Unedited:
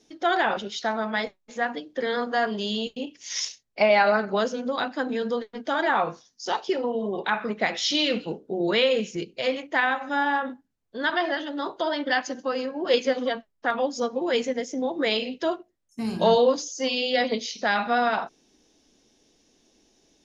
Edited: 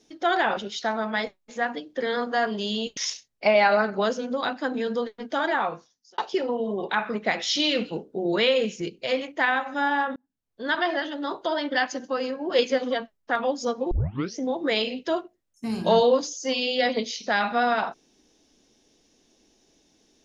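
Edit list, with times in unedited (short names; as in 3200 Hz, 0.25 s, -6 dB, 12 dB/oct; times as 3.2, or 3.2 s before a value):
2.97–3.32 cut
5.76–6.53 fade out
10.51–11.02 fade in
14.26 tape start 0.47 s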